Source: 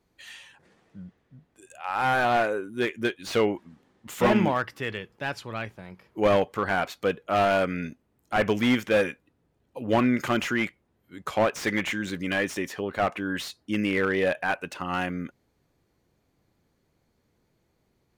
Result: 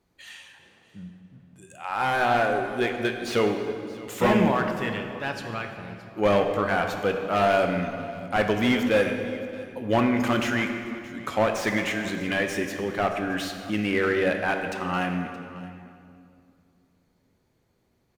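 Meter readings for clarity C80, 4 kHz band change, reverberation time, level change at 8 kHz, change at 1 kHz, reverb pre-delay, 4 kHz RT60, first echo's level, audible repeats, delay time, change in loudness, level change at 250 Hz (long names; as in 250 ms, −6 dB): 7.0 dB, +1.0 dB, 2.5 s, +1.0 dB, +1.0 dB, 6 ms, 1.8 s, −19.5 dB, 1, 622 ms, +1.0 dB, +1.5 dB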